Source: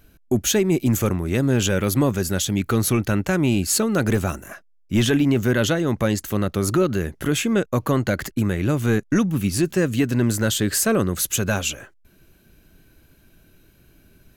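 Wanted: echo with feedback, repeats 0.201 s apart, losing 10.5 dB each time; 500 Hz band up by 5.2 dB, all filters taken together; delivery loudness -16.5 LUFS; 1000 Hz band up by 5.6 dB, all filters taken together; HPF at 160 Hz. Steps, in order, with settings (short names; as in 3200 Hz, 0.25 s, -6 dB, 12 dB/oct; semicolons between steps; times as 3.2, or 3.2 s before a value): HPF 160 Hz; bell 500 Hz +5.5 dB; bell 1000 Hz +6 dB; feedback echo 0.201 s, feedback 30%, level -10.5 dB; gain +2.5 dB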